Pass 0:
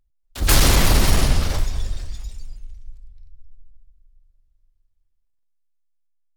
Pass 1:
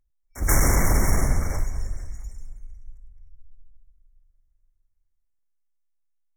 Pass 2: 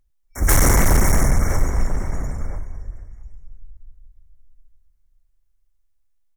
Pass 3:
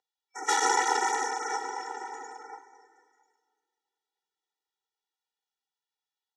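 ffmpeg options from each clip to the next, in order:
-af "afftfilt=real='re*(1-between(b*sr/4096,2300,5400))':imag='im*(1-between(b*sr/4096,2300,5400))':win_size=4096:overlap=0.75,volume=-4dB"
-filter_complex "[0:a]asoftclip=type=hard:threshold=-16dB,asplit=2[a][b];[b]adelay=991.3,volume=-10dB,highshelf=f=4k:g=-22.3[c];[a][c]amix=inputs=2:normalize=0,volume=6.5dB"
-af "highpass=f=500:w=0.5412,highpass=f=500:w=1.3066,equalizer=f=720:t=q:w=4:g=9,equalizer=f=2.4k:t=q:w=4:g=-5,equalizer=f=3.5k:t=q:w=4:g=8,lowpass=f=6.3k:w=0.5412,lowpass=f=6.3k:w=1.3066,afftfilt=real='re*eq(mod(floor(b*sr/1024/250),2),1)':imag='im*eq(mod(floor(b*sr/1024/250),2),1)':win_size=1024:overlap=0.75,volume=1dB"

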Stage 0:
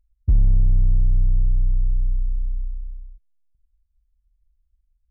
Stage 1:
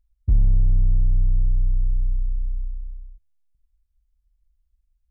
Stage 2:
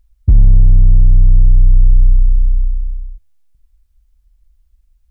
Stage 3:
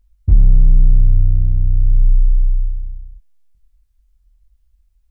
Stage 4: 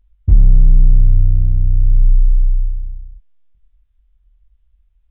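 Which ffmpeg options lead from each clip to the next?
-af "bandreject=f=74.3:t=h:w=4,bandreject=f=148.6:t=h:w=4,bandreject=f=222.9:t=h:w=4,bandreject=f=297.2:t=h:w=4,bandreject=f=371.5:t=h:w=4,bandreject=f=445.8:t=h:w=4,bandreject=f=520.1:t=h:w=4,bandreject=f=594.4:t=h:w=4,bandreject=f=668.7:t=h:w=4,bandreject=f=743:t=h:w=4,bandreject=f=817.3:t=h:w=4,bandreject=f=891.6:t=h:w=4,bandreject=f=965.9:t=h:w=4,bandreject=f=1.0402k:t=h:w=4,bandreject=f=1.1145k:t=h:w=4,bandreject=f=1.1888k:t=h:w=4,bandreject=f=1.2631k:t=h:w=4,bandreject=f=1.3374k:t=h:w=4,bandreject=f=1.4117k:t=h:w=4,bandreject=f=1.486k:t=h:w=4,bandreject=f=1.5603k:t=h:w=4,bandreject=f=1.6346k:t=h:w=4,bandreject=f=1.7089k:t=h:w=4,bandreject=f=1.7832k:t=h:w=4,bandreject=f=1.8575k:t=h:w=4,bandreject=f=1.9318k:t=h:w=4,bandreject=f=2.0061k:t=h:w=4,bandreject=f=2.0804k:t=h:w=4,bandreject=f=2.1547k:t=h:w=4,volume=-1dB"
-af "alimiter=level_in=14.5dB:limit=-1dB:release=50:level=0:latency=1,volume=-1dB"
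-af "flanger=delay=20:depth=5.6:speed=0.65"
-af "aresample=8000,aresample=44100,volume=1dB"

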